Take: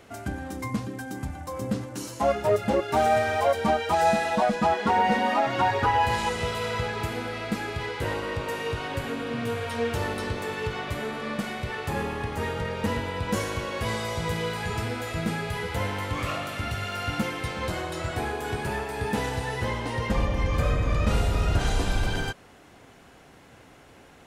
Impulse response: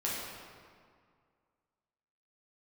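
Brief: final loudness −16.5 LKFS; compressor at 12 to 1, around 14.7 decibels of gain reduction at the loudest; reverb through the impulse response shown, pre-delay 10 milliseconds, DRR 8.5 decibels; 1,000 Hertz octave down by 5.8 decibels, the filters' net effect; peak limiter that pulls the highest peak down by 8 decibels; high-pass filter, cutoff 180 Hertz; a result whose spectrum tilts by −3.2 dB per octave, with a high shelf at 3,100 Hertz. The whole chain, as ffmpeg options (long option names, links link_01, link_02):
-filter_complex "[0:a]highpass=180,equalizer=frequency=1000:width_type=o:gain=-8.5,highshelf=frequency=3100:gain=7.5,acompressor=threshold=-36dB:ratio=12,alimiter=level_in=9dB:limit=-24dB:level=0:latency=1,volume=-9dB,asplit=2[link_01][link_02];[1:a]atrim=start_sample=2205,adelay=10[link_03];[link_02][link_03]afir=irnorm=-1:irlink=0,volume=-14.5dB[link_04];[link_01][link_04]amix=inputs=2:normalize=0,volume=24.5dB"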